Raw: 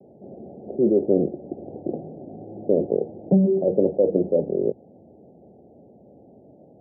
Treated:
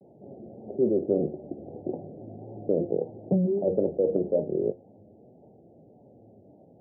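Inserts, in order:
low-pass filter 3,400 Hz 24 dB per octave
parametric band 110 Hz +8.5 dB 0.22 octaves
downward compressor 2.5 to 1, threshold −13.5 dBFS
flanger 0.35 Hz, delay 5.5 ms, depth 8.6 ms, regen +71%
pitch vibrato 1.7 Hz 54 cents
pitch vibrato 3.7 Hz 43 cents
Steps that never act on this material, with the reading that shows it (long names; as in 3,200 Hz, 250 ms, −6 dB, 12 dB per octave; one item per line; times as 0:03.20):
low-pass filter 3,400 Hz: nothing at its input above 760 Hz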